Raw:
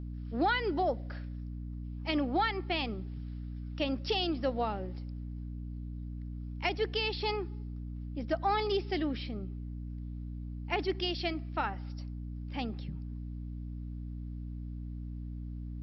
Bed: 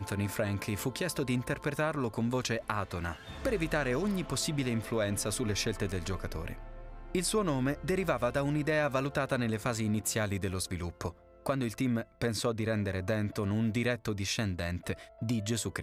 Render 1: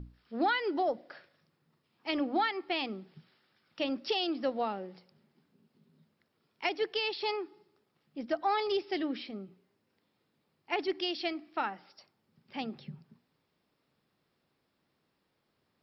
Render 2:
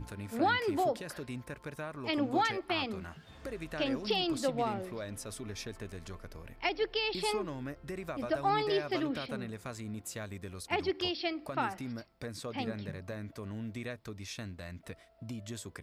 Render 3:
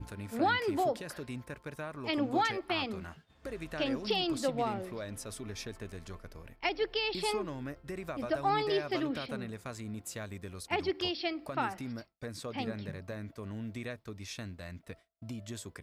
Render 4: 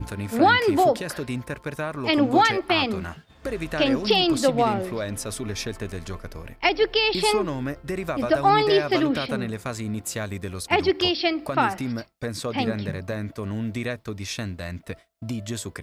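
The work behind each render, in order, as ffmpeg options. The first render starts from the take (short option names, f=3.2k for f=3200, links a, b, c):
-af "bandreject=f=60:t=h:w=6,bandreject=f=120:t=h:w=6,bandreject=f=180:t=h:w=6,bandreject=f=240:t=h:w=6,bandreject=f=300:t=h:w=6"
-filter_complex "[1:a]volume=-10dB[a];[0:a][a]amix=inputs=2:normalize=0"
-af "agate=range=-33dB:threshold=-44dB:ratio=3:detection=peak"
-af "volume=11.5dB"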